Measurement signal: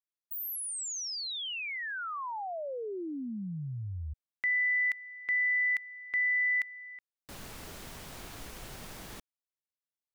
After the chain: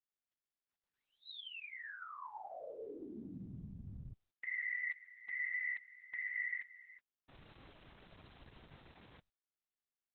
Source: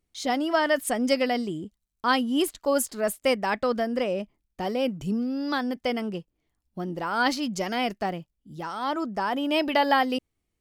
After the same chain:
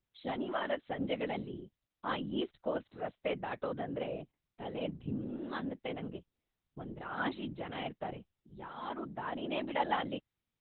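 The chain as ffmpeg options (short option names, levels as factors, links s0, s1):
-filter_complex "[0:a]afftfilt=real='hypot(re,im)*cos(2*PI*random(0))':imag='hypot(re,im)*sin(2*PI*random(1))':win_size=512:overlap=0.75,acrossover=split=6700[s0][s1];[s1]acompressor=threshold=0.00158:ratio=4:attack=1:release=60[s2];[s0][s2]amix=inputs=2:normalize=0,volume=0.562" -ar 48000 -c:a libopus -b:a 8k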